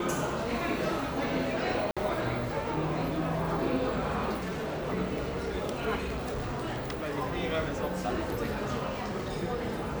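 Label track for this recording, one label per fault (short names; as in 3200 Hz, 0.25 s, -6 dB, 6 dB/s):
1.910000	1.970000	gap 56 ms
4.370000	4.880000	clipped -31 dBFS
5.980000	7.120000	clipped -30 dBFS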